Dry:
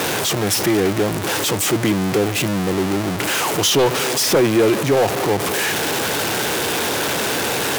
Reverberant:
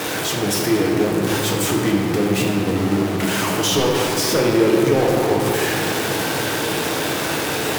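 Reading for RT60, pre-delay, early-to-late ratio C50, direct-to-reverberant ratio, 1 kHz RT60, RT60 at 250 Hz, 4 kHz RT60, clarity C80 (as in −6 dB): 3.0 s, 6 ms, 1.0 dB, −2.0 dB, 2.8 s, 4.6 s, 1.3 s, 2.5 dB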